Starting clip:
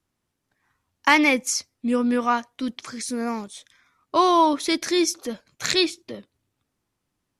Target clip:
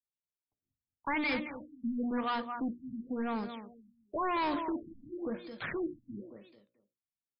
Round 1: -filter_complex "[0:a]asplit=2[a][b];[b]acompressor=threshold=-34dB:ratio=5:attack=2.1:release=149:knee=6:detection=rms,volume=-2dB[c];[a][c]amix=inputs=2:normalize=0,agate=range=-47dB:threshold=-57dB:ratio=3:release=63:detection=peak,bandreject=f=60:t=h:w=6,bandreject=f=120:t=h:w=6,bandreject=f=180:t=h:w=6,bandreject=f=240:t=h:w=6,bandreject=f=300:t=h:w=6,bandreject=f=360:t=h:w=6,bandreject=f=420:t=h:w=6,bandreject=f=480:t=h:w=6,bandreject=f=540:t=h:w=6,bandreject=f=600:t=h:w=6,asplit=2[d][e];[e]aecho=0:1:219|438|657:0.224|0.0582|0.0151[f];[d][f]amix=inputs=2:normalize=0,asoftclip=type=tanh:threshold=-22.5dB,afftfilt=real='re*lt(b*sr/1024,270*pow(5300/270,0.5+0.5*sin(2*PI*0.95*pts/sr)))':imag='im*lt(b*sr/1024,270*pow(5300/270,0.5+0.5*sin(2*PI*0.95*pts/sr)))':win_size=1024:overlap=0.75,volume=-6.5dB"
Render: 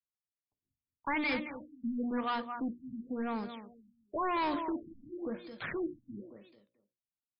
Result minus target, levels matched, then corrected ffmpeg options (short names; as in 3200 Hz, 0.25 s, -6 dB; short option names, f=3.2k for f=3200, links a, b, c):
compressor: peak gain reduction +8.5 dB
-filter_complex "[0:a]asplit=2[a][b];[b]acompressor=threshold=-23.5dB:ratio=5:attack=2.1:release=149:knee=6:detection=rms,volume=-2dB[c];[a][c]amix=inputs=2:normalize=0,agate=range=-47dB:threshold=-57dB:ratio=3:release=63:detection=peak,bandreject=f=60:t=h:w=6,bandreject=f=120:t=h:w=6,bandreject=f=180:t=h:w=6,bandreject=f=240:t=h:w=6,bandreject=f=300:t=h:w=6,bandreject=f=360:t=h:w=6,bandreject=f=420:t=h:w=6,bandreject=f=480:t=h:w=6,bandreject=f=540:t=h:w=6,bandreject=f=600:t=h:w=6,asplit=2[d][e];[e]aecho=0:1:219|438|657:0.224|0.0582|0.0151[f];[d][f]amix=inputs=2:normalize=0,asoftclip=type=tanh:threshold=-22.5dB,afftfilt=real='re*lt(b*sr/1024,270*pow(5300/270,0.5+0.5*sin(2*PI*0.95*pts/sr)))':imag='im*lt(b*sr/1024,270*pow(5300/270,0.5+0.5*sin(2*PI*0.95*pts/sr)))':win_size=1024:overlap=0.75,volume=-6.5dB"